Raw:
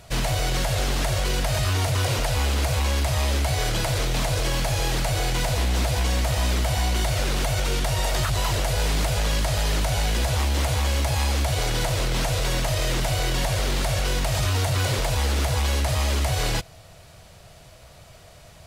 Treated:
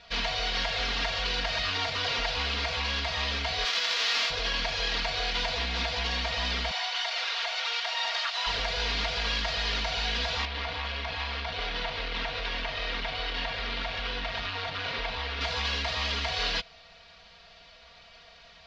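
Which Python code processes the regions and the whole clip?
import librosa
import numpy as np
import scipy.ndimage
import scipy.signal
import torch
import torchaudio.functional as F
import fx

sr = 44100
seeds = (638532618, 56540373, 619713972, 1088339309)

y = fx.envelope_flatten(x, sr, power=0.1, at=(3.64, 4.29), fade=0.02)
y = fx.highpass(y, sr, hz=230.0, slope=12, at=(3.64, 4.29), fade=0.02)
y = fx.notch(y, sr, hz=390.0, q=5.9, at=(3.64, 4.29), fade=0.02)
y = fx.chain(y, sr, fx.highpass(hz=630.0, slope=24),
    fx.clip_hard(threshold_db=-23.5), at=(6.71, 8.47))
y = fx.chain(y, sr, fx.lowpass(hz=3400.0, slope=12),
    fx.clip_hard(threshold_db=-22.0), at=(10.45, 15.41))
y = scipy.signal.sosfilt(scipy.signal.cheby2(4, 40, 8400.0, 'lowpass', fs=sr, output='sos'), y)
y = fx.tilt_shelf(y, sr, db=-8.0, hz=910.0)
y = y + 0.94 * np.pad(y, (int(4.3 * sr / 1000.0), 0))[:len(y)]
y = y * 10.0 ** (-7.0 / 20.0)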